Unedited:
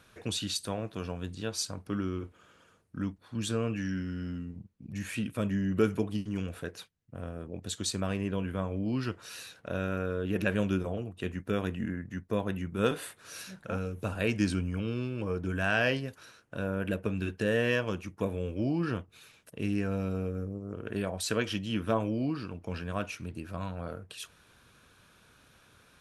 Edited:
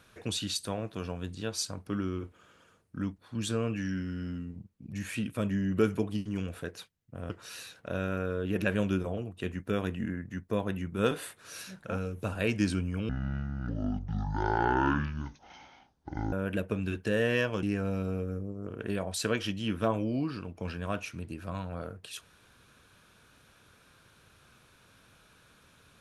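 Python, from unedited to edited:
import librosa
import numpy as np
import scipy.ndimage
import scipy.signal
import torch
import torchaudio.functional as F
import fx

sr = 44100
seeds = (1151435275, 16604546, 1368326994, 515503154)

y = fx.edit(x, sr, fx.cut(start_s=7.3, length_s=1.8),
    fx.speed_span(start_s=14.89, length_s=1.78, speed=0.55),
    fx.cut(start_s=17.97, length_s=1.72), tone=tone)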